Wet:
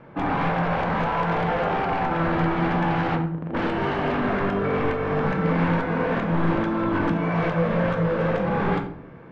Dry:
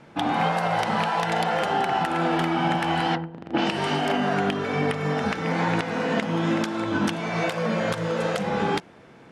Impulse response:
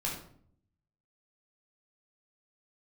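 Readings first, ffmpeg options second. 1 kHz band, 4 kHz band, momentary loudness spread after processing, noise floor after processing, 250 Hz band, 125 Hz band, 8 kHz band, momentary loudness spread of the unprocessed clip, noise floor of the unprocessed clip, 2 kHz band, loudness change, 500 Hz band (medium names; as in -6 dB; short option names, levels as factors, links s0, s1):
-0.5 dB, -8.5 dB, 3 LU, -40 dBFS, +2.0 dB, +4.5 dB, under -15 dB, 3 LU, -49 dBFS, -0.5 dB, +1.0 dB, +1.5 dB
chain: -filter_complex "[0:a]aeval=exprs='0.0841*(abs(mod(val(0)/0.0841+3,4)-2)-1)':c=same,lowpass=1700,equalizer=f=710:w=4.1:g=-3,asplit=2[s0][s1];[1:a]atrim=start_sample=2205[s2];[s1][s2]afir=irnorm=-1:irlink=0,volume=0.631[s3];[s0][s3]amix=inputs=2:normalize=0"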